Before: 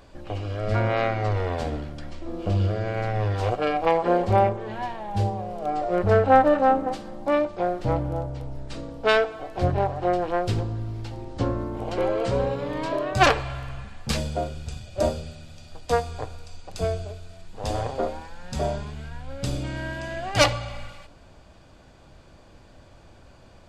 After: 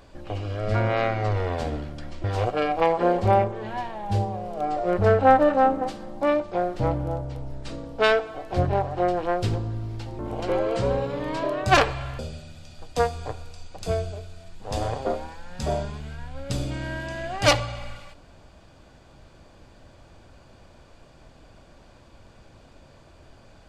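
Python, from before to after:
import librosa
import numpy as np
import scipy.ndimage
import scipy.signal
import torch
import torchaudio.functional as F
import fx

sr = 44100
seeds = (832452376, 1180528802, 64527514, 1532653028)

y = fx.edit(x, sr, fx.cut(start_s=2.24, length_s=1.05),
    fx.cut(start_s=11.24, length_s=0.44),
    fx.cut(start_s=13.68, length_s=1.44), tone=tone)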